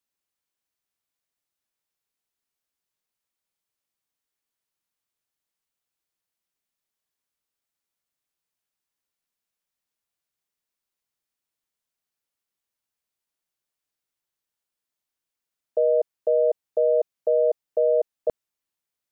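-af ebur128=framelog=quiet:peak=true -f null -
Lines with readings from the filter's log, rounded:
Integrated loudness:
  I:         -23.6 LUFS
  Threshold: -33.7 LUFS
Loudness range:
  LRA:         7.4 LU
  Threshold: -45.7 LUFS
  LRA low:   -31.1 LUFS
  LRA high:  -23.7 LUFS
True peak:
  Peak:      -13.3 dBFS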